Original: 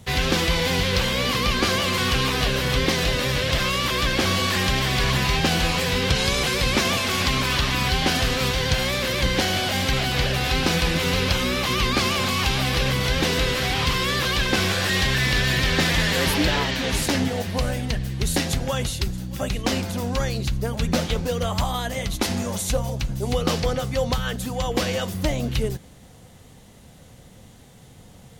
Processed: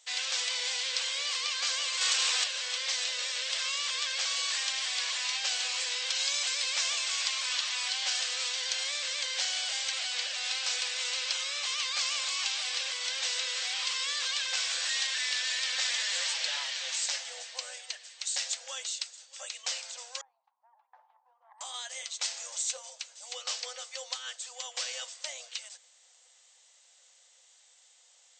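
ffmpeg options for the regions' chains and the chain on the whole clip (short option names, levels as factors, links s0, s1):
-filter_complex "[0:a]asettb=1/sr,asplit=3[s0][s1][s2];[s0]atrim=end=2.014[s3];[s1]atrim=start=2.01:end=2.44,asetpts=PTS-STARTPTS,afade=t=in:d=0.004:c=qsin,afade=t=out:st=0.426:d=0.004:c=qsin,acontrast=51,aeval=exprs='0.237*(abs(mod(val(0)/0.237+3,4)-2)-1)':c=same[s4];[s2]atrim=start=2.436[s5];[s3][s4]acrossfade=d=0.004:c1=hsin:c2=qsin[s6];[s6][s5]acrossfade=d=0.004:c1=qsin:c2=hsin,asettb=1/sr,asplit=3[s7][s8][s9];[s7]atrim=end=20.214[s10];[s8]atrim=start=20.21:end=21.61,asetpts=PTS-STARTPTS,afade=t=in:d=0.004:c=qsin,afade=t=out:st=1.396:d=0.004:c=qsin,asuperpass=centerf=880:order=4:qfactor=3.9,aeval=exprs='(tanh(12.6*val(0)+0.65)-tanh(0.65))/12.6':c=same[s11];[s9]atrim=start=21.606[s12];[s10][s11]acrossfade=d=0.004:c1=hsin:c2=qsin[s13];[s13][s12]acrossfade=d=0.004:c1=qsin:c2=hsin,afftfilt=real='re*between(b*sr/4096,480,8400)':imag='im*between(b*sr/4096,480,8400)':win_size=4096:overlap=0.75,aderivative"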